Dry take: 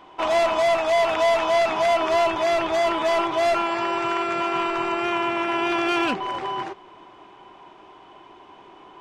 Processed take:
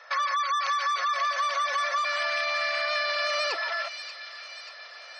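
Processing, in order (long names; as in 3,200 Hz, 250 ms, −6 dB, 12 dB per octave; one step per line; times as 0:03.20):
high-pass filter 370 Hz 12 dB per octave
gate on every frequency bin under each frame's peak −25 dB strong
high-shelf EQ 7,000 Hz −11 dB
notch filter 930 Hz, Q 9.8
downward compressor, threshold −24 dBFS, peak gain reduction 7.5 dB
on a send: delay with a high-pass on its return 1,013 ms, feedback 62%, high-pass 1,500 Hz, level −8 dB
on the sum: wrong playback speed 45 rpm record played at 78 rpm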